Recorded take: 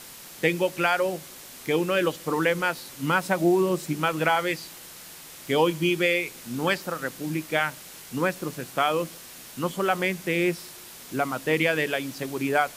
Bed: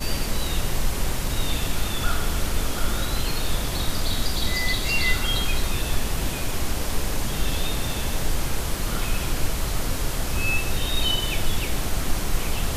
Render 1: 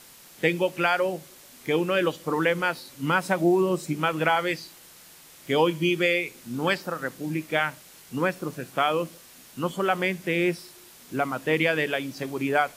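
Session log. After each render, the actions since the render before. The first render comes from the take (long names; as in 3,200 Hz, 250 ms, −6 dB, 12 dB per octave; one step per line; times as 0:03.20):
noise reduction from a noise print 6 dB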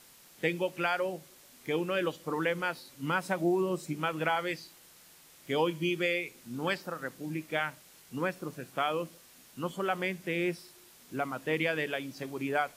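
level −7 dB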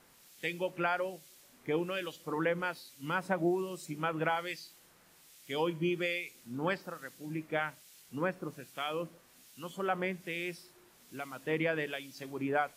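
two-band tremolo in antiphase 1.2 Hz, depth 70%, crossover 2,100 Hz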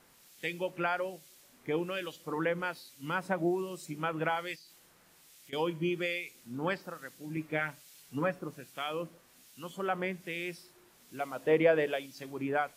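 0:04.55–0:05.53: downward compressor 5 to 1, threshold −52 dBFS
0:07.36–0:08.39: comb filter 7 ms
0:11.20–0:12.06: parametric band 570 Hz +10 dB 1.4 octaves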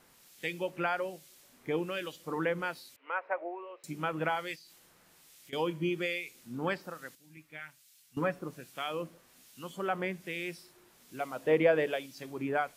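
0:02.96–0:03.84: elliptic band-pass filter 480–2,400 Hz, stop band 60 dB
0:07.15–0:08.17: guitar amp tone stack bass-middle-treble 5-5-5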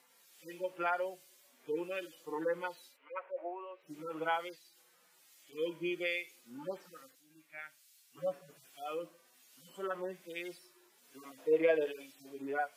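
harmonic-percussive split with one part muted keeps harmonic
high-pass filter 400 Hz 12 dB per octave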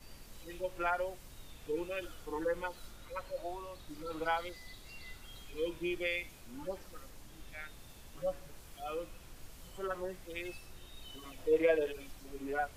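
mix in bed −28 dB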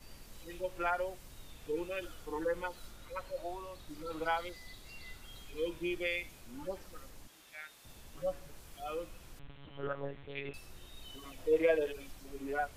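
0:07.27–0:07.85: high-pass filter 860 Hz 6 dB per octave
0:09.39–0:10.54: one-pitch LPC vocoder at 8 kHz 140 Hz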